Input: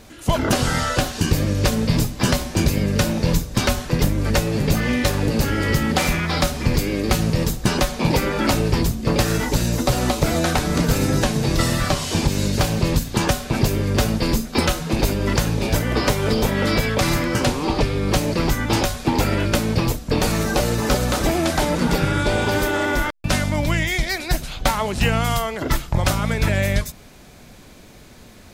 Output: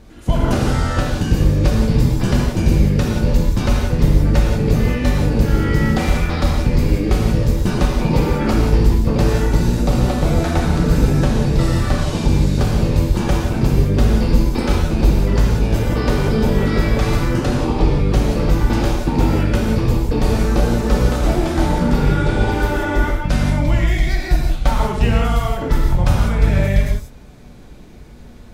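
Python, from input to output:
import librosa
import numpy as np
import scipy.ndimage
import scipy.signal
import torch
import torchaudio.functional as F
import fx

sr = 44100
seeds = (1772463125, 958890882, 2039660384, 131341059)

y = fx.tilt_eq(x, sr, slope=-2.0)
y = fx.rev_gated(y, sr, seeds[0], gate_ms=210, shape='flat', drr_db=-2.0)
y = y * 10.0 ** (-5.0 / 20.0)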